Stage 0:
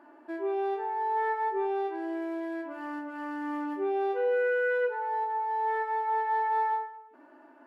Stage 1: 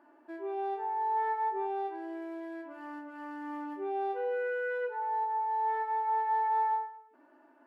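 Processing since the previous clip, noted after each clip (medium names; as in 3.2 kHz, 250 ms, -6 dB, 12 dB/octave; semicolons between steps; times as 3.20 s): dynamic bell 830 Hz, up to +7 dB, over -43 dBFS, Q 4.2; trim -6.5 dB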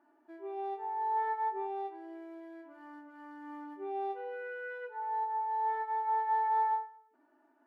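comb of notches 530 Hz; upward expansion 1.5:1, over -41 dBFS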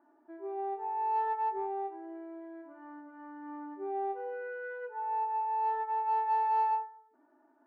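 low-pass 1.5 kHz 12 dB/octave; in parallel at -9.5 dB: saturation -32 dBFS, distortion -13 dB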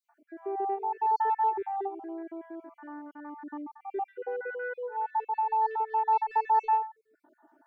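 random holes in the spectrogram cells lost 42%; trim +6 dB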